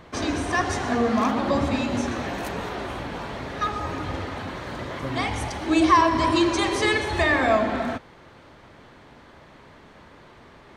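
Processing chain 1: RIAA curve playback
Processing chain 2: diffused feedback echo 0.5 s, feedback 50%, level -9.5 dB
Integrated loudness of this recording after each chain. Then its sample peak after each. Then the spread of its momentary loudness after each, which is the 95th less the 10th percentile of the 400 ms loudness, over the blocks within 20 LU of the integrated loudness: -19.5, -23.5 LUFS; -3.0, -5.0 dBFS; 10, 14 LU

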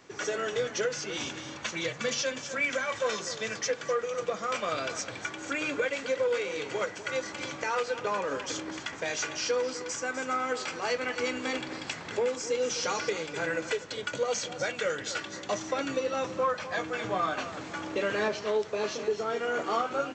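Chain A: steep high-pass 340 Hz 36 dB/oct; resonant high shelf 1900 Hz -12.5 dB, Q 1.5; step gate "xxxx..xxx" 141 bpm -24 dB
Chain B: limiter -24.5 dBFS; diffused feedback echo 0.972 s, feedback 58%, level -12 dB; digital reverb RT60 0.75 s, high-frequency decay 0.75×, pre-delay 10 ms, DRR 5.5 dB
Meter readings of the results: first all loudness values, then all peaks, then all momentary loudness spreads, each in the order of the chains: -33.0, -32.5 LUFS; -15.5, -20.0 dBFS; 11, 4 LU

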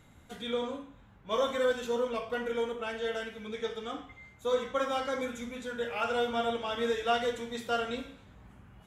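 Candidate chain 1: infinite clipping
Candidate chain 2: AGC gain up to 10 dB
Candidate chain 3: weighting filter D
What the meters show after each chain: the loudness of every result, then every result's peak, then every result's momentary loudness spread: -33.0, -23.0, -29.5 LUFS; -33.5, -6.5, -12.5 dBFS; 1, 10, 10 LU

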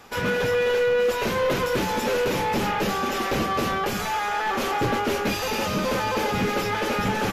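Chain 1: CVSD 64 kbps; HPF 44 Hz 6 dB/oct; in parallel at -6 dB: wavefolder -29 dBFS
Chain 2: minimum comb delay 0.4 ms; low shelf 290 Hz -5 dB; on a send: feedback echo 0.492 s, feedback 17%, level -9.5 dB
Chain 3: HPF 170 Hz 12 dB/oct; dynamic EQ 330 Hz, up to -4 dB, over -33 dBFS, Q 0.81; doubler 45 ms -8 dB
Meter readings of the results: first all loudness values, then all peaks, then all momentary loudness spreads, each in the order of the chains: -24.0, -25.5, -24.5 LUFS; -14.0, -14.0, -13.5 dBFS; 2, 4, 4 LU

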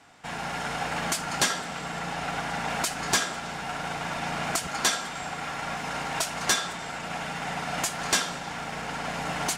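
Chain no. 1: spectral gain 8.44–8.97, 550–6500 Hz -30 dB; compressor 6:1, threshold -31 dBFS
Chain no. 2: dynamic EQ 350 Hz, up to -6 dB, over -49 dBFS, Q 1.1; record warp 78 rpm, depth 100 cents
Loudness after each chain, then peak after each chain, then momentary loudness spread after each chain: -34.5, -29.5 LUFS; -16.5, -11.5 dBFS; 3, 9 LU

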